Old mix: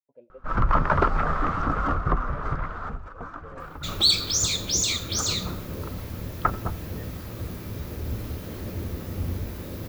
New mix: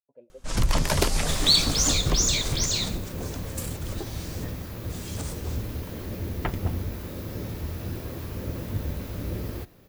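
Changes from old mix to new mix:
first sound: remove synth low-pass 1300 Hz, resonance Q 6.9; second sound: entry -2.55 s

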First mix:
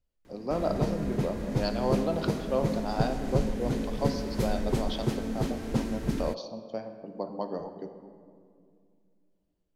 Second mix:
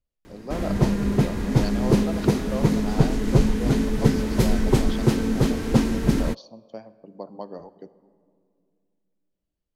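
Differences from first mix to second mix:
speech: send -10.5 dB; background +9.5 dB

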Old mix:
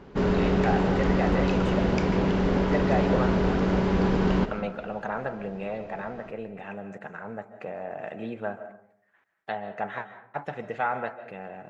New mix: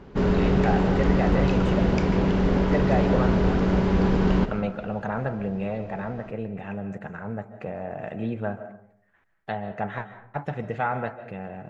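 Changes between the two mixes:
speech: remove HPF 310 Hz 6 dB/oct; master: add low shelf 160 Hz +5.5 dB

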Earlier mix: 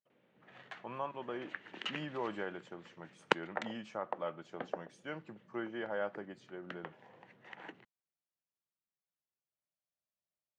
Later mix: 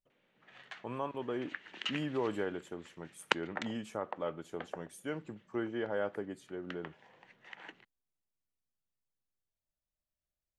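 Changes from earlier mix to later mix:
speech: remove speaker cabinet 180–5500 Hz, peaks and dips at 270 Hz -9 dB, 430 Hz -8 dB, 3600 Hz -4 dB; background: add tilt shelf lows -5.5 dB, about 1400 Hz

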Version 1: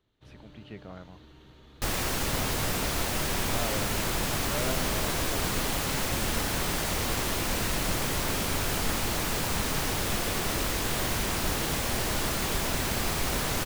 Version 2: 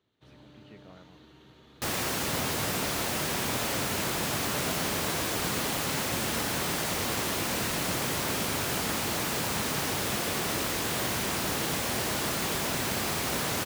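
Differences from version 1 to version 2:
speech -7.5 dB; master: add HPF 110 Hz 12 dB/oct

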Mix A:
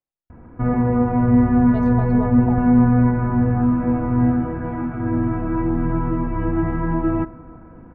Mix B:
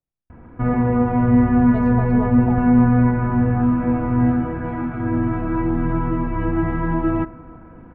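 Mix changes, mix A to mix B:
speech: add tone controls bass +12 dB, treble -7 dB; background: remove LPF 1700 Hz 6 dB/oct

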